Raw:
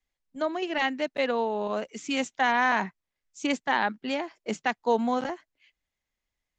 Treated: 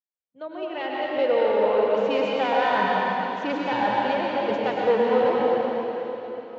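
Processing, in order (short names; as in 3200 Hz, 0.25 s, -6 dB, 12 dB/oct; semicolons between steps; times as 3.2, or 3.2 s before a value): opening faded in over 1.83 s; notch 1700 Hz, Q 12; soft clip -26.5 dBFS, distortion -8 dB; speaker cabinet 110–3700 Hz, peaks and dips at 110 Hz +7 dB, 250 Hz -6 dB, 500 Hz +10 dB, 2100 Hz -4 dB; plate-style reverb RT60 3.8 s, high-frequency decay 0.95×, pre-delay 90 ms, DRR -4.5 dB; gain +3.5 dB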